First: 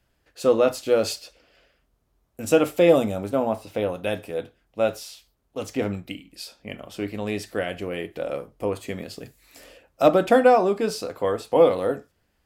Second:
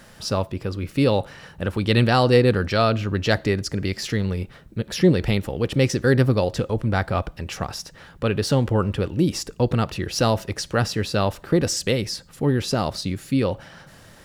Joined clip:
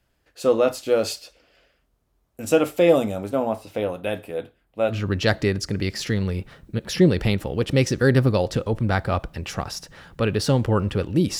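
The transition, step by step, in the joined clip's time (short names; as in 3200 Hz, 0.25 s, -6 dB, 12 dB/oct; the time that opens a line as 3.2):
first
3.95–4.95 bell 5900 Hz -8.5 dB 0.65 oct
4.92 switch to second from 2.95 s, crossfade 0.06 s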